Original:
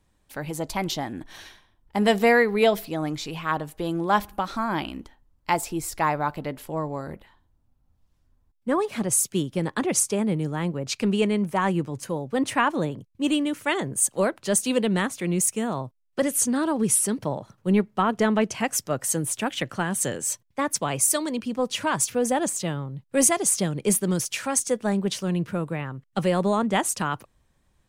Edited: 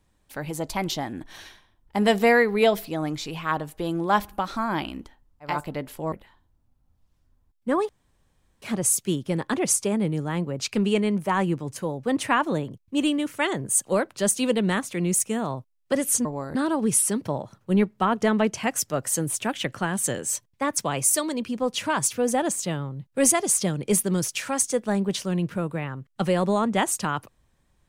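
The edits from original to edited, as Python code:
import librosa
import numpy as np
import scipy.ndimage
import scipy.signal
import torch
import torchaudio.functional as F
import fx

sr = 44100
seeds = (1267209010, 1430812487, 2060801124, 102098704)

y = fx.edit(x, sr, fx.cut(start_s=5.52, length_s=0.7, crossfade_s=0.24),
    fx.move(start_s=6.82, length_s=0.3, to_s=16.52),
    fx.insert_room_tone(at_s=8.89, length_s=0.73), tone=tone)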